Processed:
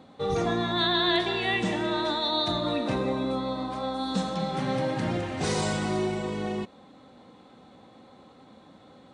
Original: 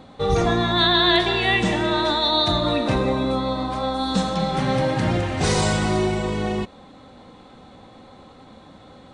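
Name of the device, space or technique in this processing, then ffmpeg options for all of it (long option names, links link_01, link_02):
filter by subtraction: -filter_complex "[0:a]asplit=2[link_01][link_02];[link_02]lowpass=220,volume=-1[link_03];[link_01][link_03]amix=inputs=2:normalize=0,volume=-7.5dB"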